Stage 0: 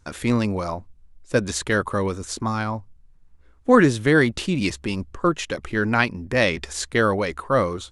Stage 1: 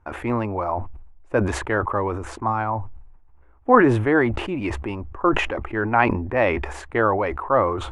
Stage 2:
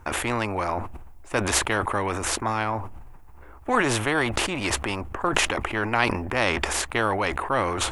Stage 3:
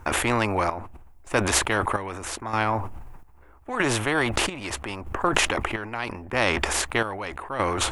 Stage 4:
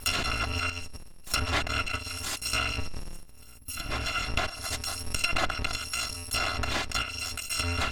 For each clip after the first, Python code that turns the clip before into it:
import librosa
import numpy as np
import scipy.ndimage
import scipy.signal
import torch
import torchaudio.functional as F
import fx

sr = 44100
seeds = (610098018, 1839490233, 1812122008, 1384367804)

y1 = fx.curve_eq(x, sr, hz=(110.0, 160.0, 340.0, 490.0, 820.0, 1500.0, 2600.0, 4000.0, 5600.0, 8400.0), db=(0, -10, 3, 0, 10, 0, -4, -21, -23, -21))
y1 = fx.sustainer(y1, sr, db_per_s=55.0)
y1 = y1 * librosa.db_to_amplitude(-2.0)
y2 = fx.high_shelf(y1, sr, hz=4600.0, db=12.0)
y2 = fx.spectral_comp(y2, sr, ratio=2.0)
y2 = y2 * librosa.db_to_amplitude(-1.0)
y3 = fx.rider(y2, sr, range_db=10, speed_s=0.5)
y3 = fx.chopper(y3, sr, hz=0.79, depth_pct=65, duty_pct=55)
y3 = y3 * librosa.db_to_amplitude(1.5)
y4 = fx.bit_reversed(y3, sr, seeds[0], block=256)
y4 = fx.env_lowpass_down(y4, sr, base_hz=2400.0, full_db=-20.0)
y4 = fx.spec_box(y4, sr, start_s=3.58, length_s=0.33, low_hz=330.0, high_hz=9900.0, gain_db=-9)
y4 = y4 * librosa.db_to_amplitude(4.0)